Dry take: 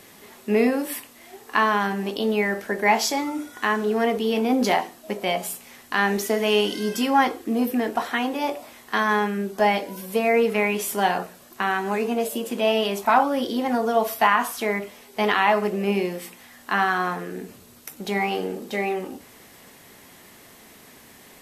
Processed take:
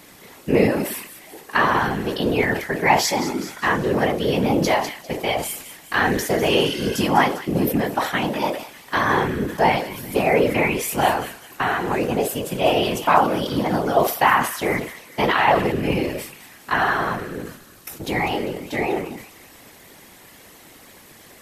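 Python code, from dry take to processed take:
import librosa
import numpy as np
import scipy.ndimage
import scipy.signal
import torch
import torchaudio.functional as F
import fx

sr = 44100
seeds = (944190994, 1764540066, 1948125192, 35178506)

y = fx.echo_wet_highpass(x, sr, ms=199, feedback_pct=48, hz=1900.0, wet_db=-12.0)
y = fx.whisperise(y, sr, seeds[0])
y = fx.sustainer(y, sr, db_per_s=98.0)
y = F.gain(torch.from_numpy(y), 2.0).numpy()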